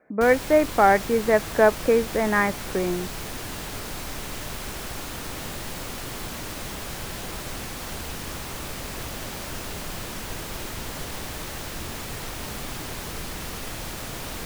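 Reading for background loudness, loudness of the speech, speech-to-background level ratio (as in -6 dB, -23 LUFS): -33.5 LUFS, -21.5 LUFS, 12.0 dB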